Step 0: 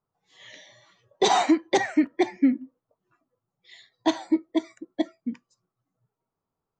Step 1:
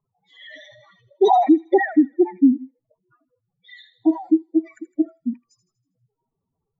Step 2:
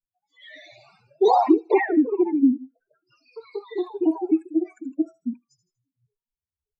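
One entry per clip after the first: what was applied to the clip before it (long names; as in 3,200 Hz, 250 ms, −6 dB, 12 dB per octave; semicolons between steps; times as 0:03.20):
expanding power law on the bin magnitudes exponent 3.1; delay with a high-pass on its return 80 ms, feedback 46%, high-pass 3,400 Hz, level −10 dB; level +6.5 dB
delay with pitch and tempo change per echo 165 ms, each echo +2 semitones, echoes 3, each echo −6 dB; noise reduction from a noise print of the clip's start 26 dB; level −3.5 dB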